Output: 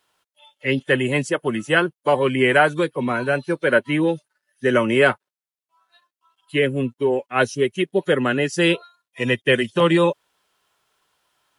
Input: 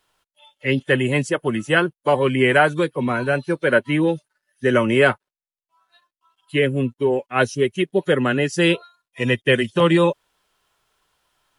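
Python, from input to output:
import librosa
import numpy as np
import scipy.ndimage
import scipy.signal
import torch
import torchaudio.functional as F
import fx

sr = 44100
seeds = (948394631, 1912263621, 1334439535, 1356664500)

y = fx.highpass(x, sr, hz=140.0, slope=6)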